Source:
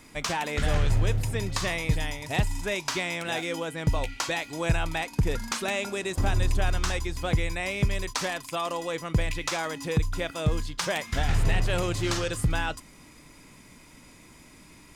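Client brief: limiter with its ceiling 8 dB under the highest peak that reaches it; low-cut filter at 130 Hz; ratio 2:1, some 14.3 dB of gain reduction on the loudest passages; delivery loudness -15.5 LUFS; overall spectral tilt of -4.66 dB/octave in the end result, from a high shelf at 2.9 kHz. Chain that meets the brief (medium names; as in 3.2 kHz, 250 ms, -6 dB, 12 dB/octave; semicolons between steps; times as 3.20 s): high-pass 130 Hz; treble shelf 2.9 kHz -6 dB; compression 2:1, threshold -49 dBFS; trim +29.5 dB; peak limiter -4 dBFS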